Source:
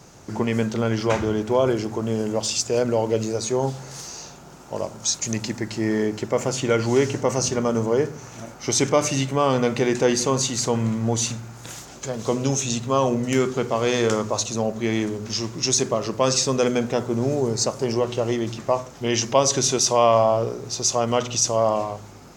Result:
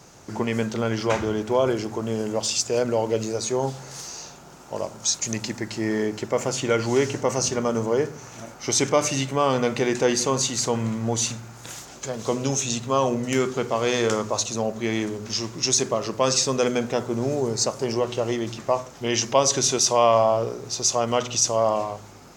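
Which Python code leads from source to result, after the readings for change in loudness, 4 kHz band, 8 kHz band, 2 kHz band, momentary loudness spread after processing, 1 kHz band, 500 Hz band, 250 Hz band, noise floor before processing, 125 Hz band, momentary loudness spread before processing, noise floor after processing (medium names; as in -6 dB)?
-1.0 dB, 0.0 dB, 0.0 dB, 0.0 dB, 10 LU, -0.5 dB, -1.5 dB, -2.5 dB, -43 dBFS, -3.5 dB, 9 LU, -45 dBFS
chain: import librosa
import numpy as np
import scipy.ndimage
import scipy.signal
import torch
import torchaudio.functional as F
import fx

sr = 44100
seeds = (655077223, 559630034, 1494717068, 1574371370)

y = fx.low_shelf(x, sr, hz=360.0, db=-4.0)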